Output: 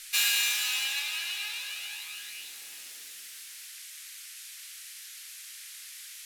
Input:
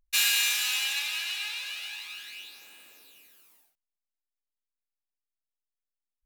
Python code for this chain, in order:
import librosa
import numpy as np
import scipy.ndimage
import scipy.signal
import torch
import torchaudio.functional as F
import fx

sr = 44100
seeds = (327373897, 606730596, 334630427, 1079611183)

y = fx.dmg_noise_band(x, sr, seeds[0], low_hz=1700.0, high_hz=13000.0, level_db=-44.0)
y = F.gain(torch.from_numpy(y), -1.5).numpy()